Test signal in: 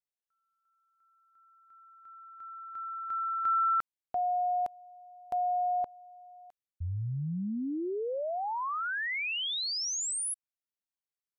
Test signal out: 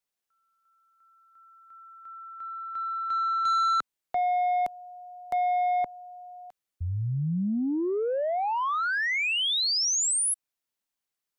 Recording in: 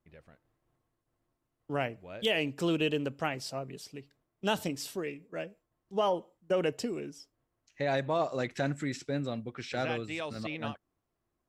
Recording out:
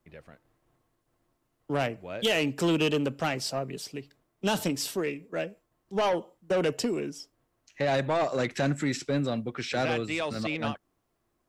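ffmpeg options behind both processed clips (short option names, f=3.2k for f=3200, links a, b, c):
-filter_complex "[0:a]equalizer=f=73:w=0.72:g=-4,acrossover=split=200|4200[a][b][c];[b]asoftclip=type=tanh:threshold=-29.5dB[d];[a][d][c]amix=inputs=3:normalize=0,volume=7.5dB"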